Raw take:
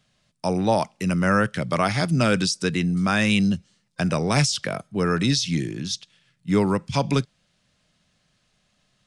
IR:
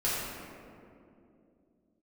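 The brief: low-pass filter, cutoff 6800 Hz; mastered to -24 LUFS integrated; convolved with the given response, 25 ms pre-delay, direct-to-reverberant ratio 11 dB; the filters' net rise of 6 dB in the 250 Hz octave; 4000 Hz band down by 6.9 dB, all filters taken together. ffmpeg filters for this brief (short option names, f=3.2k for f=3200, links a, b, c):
-filter_complex "[0:a]lowpass=6.8k,equalizer=f=250:t=o:g=8.5,equalizer=f=4k:t=o:g=-8.5,asplit=2[a][b];[1:a]atrim=start_sample=2205,adelay=25[c];[b][c]afir=irnorm=-1:irlink=0,volume=-20.5dB[d];[a][d]amix=inputs=2:normalize=0,volume=-5dB"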